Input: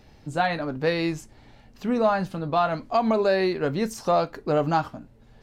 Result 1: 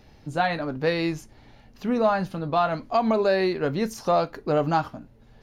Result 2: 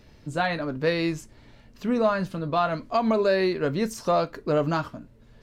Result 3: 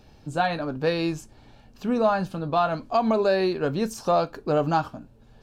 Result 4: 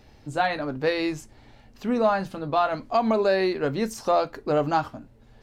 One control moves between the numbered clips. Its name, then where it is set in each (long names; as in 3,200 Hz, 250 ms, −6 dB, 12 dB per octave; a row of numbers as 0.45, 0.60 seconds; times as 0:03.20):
notch filter, centre frequency: 7,900, 790, 2,000, 170 Hertz